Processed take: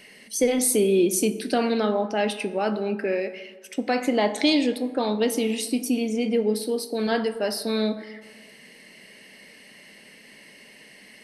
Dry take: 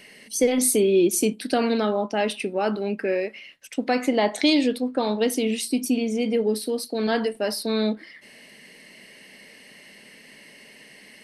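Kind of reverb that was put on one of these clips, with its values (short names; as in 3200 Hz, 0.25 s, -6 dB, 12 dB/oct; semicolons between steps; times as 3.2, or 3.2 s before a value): plate-style reverb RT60 1.5 s, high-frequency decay 0.45×, DRR 11 dB; gain -1 dB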